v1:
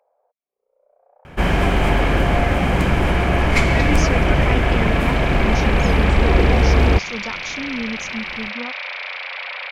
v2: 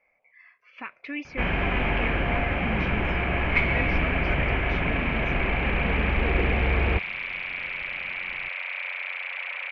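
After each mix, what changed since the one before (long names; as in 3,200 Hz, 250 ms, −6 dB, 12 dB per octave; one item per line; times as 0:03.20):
speech: entry −2.75 s
master: add transistor ladder low-pass 2,900 Hz, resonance 50%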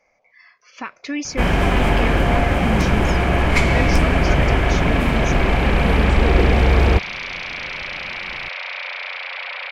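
master: remove transistor ladder low-pass 2,900 Hz, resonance 50%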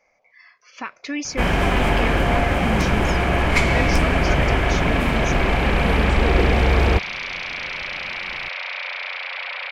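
master: add low-shelf EQ 420 Hz −3 dB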